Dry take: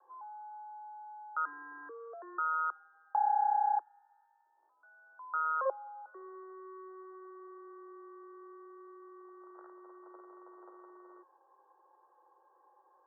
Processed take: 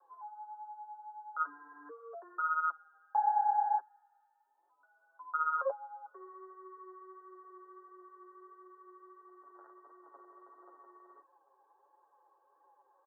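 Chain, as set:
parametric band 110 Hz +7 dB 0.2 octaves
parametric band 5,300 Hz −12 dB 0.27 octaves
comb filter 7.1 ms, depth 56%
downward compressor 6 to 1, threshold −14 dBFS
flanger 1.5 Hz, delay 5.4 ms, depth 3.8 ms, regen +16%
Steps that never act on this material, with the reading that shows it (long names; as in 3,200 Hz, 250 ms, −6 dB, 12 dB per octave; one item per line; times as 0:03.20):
parametric band 110 Hz: nothing at its input below 360 Hz
parametric band 5,300 Hz: nothing at its input above 1,500 Hz
downward compressor, threshold −14 dBFS: peak of its input −18.5 dBFS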